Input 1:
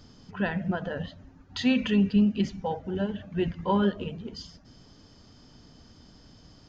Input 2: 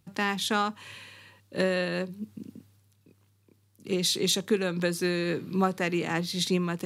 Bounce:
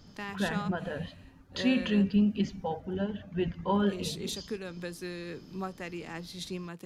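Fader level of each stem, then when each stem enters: −3.0, −11.5 decibels; 0.00, 0.00 seconds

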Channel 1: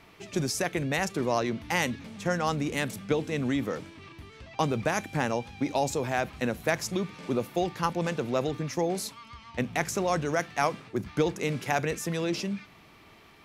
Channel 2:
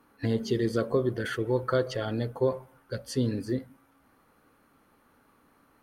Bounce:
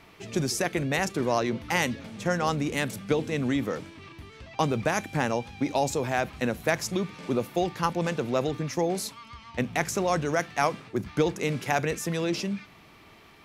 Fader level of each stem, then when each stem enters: +1.5, −18.0 decibels; 0.00, 0.00 seconds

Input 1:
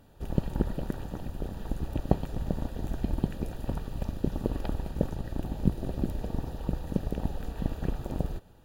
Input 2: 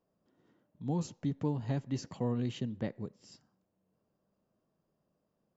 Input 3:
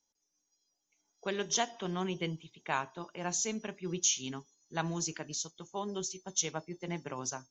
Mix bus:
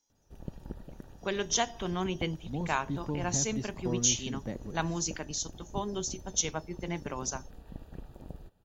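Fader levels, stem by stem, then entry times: −14.0, −2.0, +2.5 decibels; 0.10, 1.65, 0.00 seconds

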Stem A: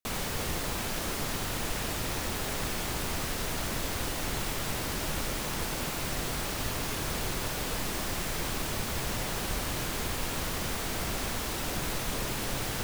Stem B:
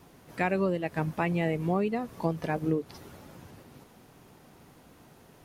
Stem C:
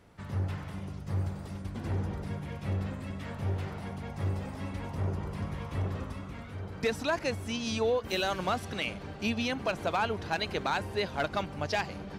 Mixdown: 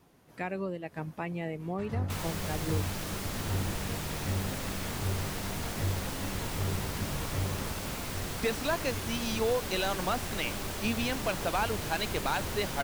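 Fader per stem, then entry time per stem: −4.5, −7.5, −1.0 decibels; 2.05, 0.00, 1.60 seconds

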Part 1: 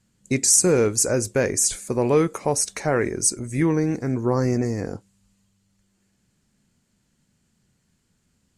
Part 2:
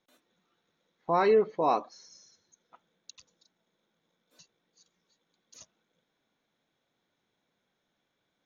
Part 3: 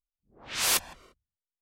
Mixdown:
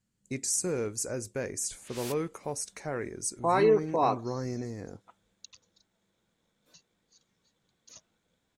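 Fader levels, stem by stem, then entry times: −13.0, 0.0, −17.0 decibels; 0.00, 2.35, 1.35 seconds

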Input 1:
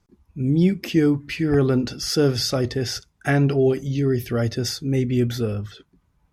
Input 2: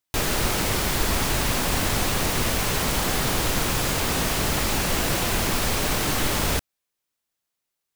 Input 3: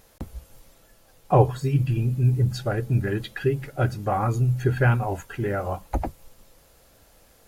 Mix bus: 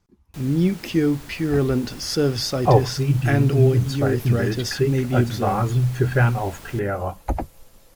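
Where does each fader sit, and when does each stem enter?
−1.5, −19.0, +2.0 decibels; 0.00, 0.20, 1.35 seconds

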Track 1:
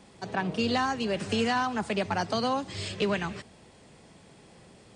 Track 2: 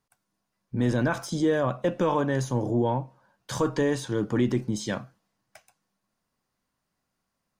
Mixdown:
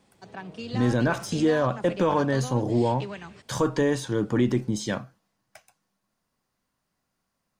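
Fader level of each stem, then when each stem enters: −9.5, +1.5 decibels; 0.00, 0.00 seconds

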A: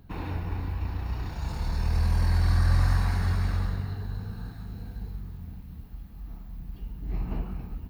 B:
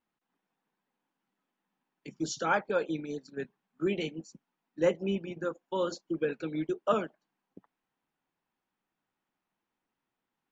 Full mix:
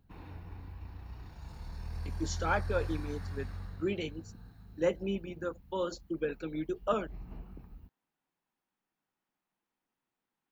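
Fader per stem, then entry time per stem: −14.5, −3.0 decibels; 0.00, 0.00 seconds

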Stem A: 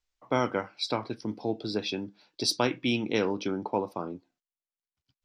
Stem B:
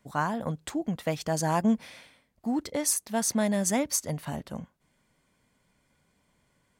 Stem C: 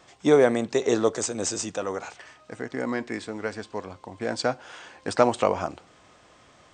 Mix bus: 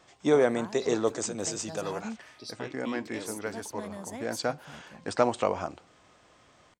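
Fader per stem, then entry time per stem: −15.5, −14.5, −4.5 decibels; 0.00, 0.40, 0.00 seconds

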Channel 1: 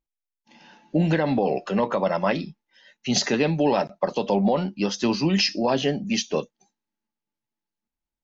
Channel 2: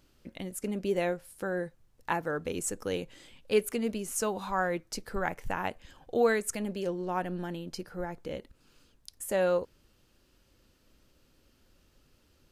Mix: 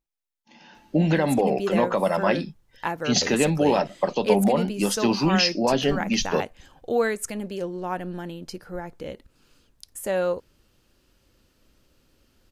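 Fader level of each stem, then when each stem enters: +0.5, +2.5 decibels; 0.00, 0.75 seconds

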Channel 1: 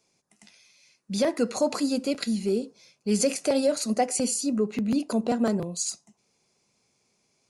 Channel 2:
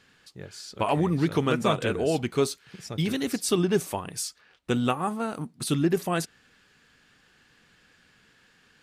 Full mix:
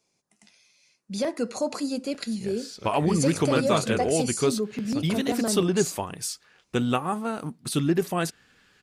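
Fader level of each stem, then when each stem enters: −3.0, +0.5 decibels; 0.00, 2.05 seconds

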